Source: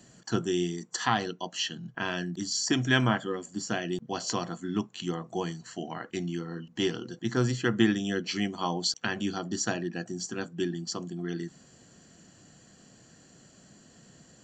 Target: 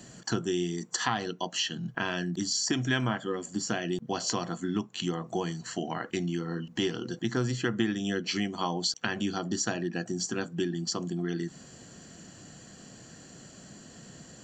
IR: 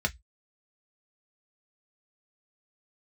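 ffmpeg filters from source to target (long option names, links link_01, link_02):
-af "acompressor=threshold=-36dB:ratio=2.5,volume=6.5dB"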